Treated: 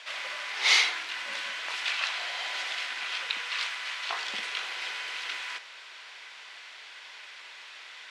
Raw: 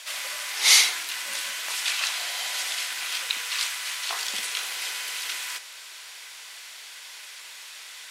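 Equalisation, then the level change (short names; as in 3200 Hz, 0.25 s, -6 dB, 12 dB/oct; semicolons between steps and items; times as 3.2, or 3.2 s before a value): LPF 3200 Hz 12 dB/oct; 0.0 dB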